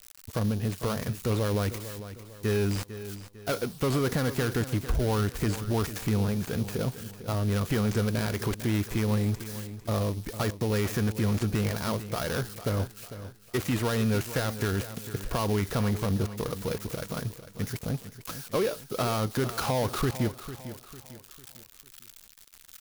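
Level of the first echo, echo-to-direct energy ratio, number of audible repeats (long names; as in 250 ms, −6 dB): −13.0 dB, −12.0 dB, 3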